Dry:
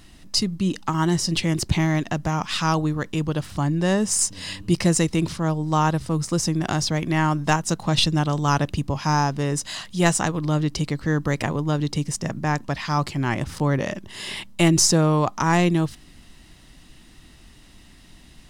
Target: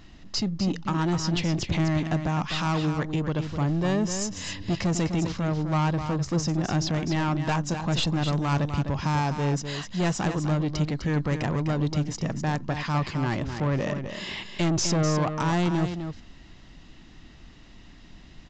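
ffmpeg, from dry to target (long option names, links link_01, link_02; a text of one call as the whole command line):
ffmpeg -i in.wav -af "highshelf=frequency=4500:gain=-9,aresample=16000,asoftclip=type=tanh:threshold=-20.5dB,aresample=44100,aecho=1:1:253:0.398" out.wav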